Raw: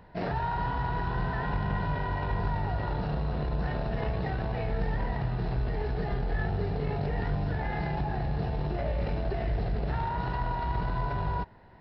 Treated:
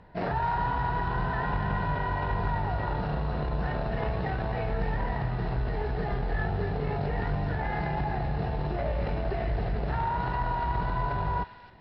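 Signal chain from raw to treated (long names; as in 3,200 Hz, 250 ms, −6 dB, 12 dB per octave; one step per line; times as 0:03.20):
high-frequency loss of the air 60 metres
delay with a high-pass on its return 264 ms, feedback 36%, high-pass 2,000 Hz, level −5.5 dB
dynamic equaliser 1,100 Hz, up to +4 dB, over −43 dBFS, Q 0.71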